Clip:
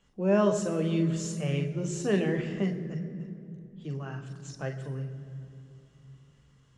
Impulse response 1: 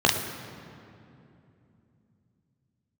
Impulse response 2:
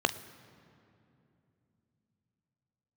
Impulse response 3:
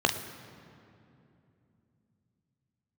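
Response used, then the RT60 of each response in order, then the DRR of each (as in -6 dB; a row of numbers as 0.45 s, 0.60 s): 3; 2.8 s, 2.8 s, 2.8 s; -1.0 dB, 10.5 dB, 4.5 dB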